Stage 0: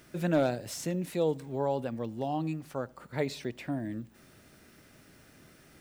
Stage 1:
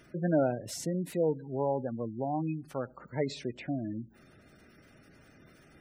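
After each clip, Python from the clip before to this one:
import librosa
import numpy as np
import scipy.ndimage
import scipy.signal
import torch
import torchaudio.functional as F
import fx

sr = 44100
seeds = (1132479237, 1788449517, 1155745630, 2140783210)

y = fx.spec_gate(x, sr, threshold_db=-20, keep='strong')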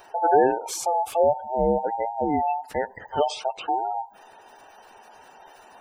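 y = fx.band_invert(x, sr, width_hz=1000)
y = F.gain(torch.from_numpy(y), 8.5).numpy()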